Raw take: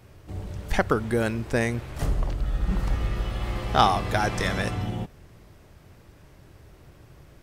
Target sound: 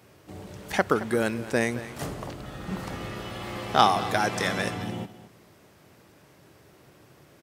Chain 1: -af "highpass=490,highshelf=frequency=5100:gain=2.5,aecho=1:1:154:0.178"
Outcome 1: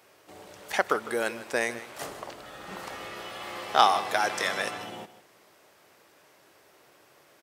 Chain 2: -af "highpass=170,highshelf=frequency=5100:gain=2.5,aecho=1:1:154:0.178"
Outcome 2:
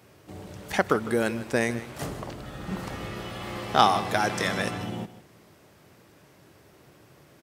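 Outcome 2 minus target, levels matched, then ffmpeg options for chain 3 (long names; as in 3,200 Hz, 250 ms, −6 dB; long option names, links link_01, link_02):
echo 67 ms early
-af "highpass=170,highshelf=frequency=5100:gain=2.5,aecho=1:1:221:0.178"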